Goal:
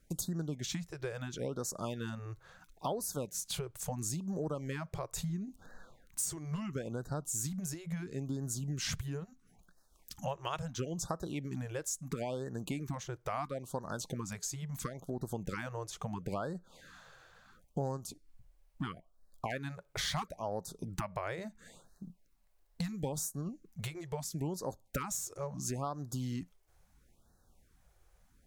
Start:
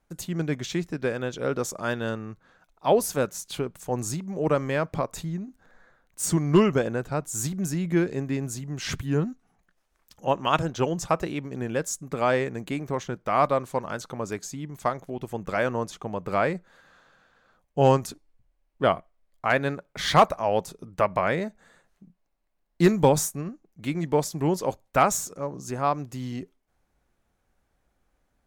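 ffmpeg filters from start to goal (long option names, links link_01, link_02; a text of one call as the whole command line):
ffmpeg -i in.wav -af "bass=frequency=250:gain=5,treble=frequency=4000:gain=7,acompressor=threshold=-35dB:ratio=8,afftfilt=real='re*(1-between(b*sr/1024,210*pow(2700/210,0.5+0.5*sin(2*PI*0.74*pts/sr))/1.41,210*pow(2700/210,0.5+0.5*sin(2*PI*0.74*pts/sr))*1.41))':imag='im*(1-between(b*sr/1024,210*pow(2700/210,0.5+0.5*sin(2*PI*0.74*pts/sr))/1.41,210*pow(2700/210,0.5+0.5*sin(2*PI*0.74*pts/sr))*1.41))':win_size=1024:overlap=0.75,volume=1dB" out.wav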